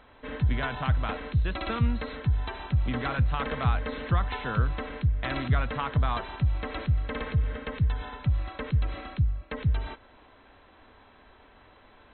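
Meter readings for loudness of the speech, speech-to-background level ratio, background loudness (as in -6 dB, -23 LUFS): -35.0 LUFS, -5.0 dB, -30.0 LUFS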